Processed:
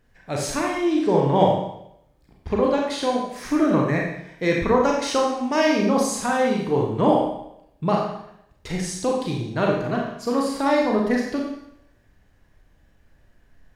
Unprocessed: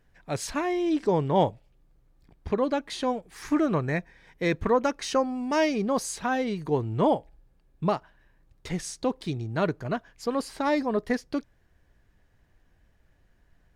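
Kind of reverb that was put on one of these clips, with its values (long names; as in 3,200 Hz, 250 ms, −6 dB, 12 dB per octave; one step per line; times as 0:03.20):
four-comb reverb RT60 0.76 s, combs from 29 ms, DRR −1.5 dB
level +2 dB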